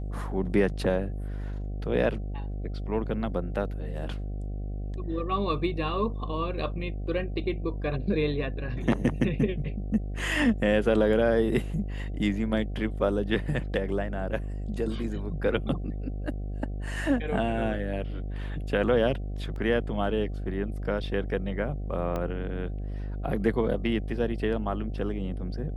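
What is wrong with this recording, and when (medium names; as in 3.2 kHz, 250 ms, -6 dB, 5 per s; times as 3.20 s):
buzz 50 Hz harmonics 15 -33 dBFS
19.56 s: dropout 2.1 ms
22.16 s: pop -19 dBFS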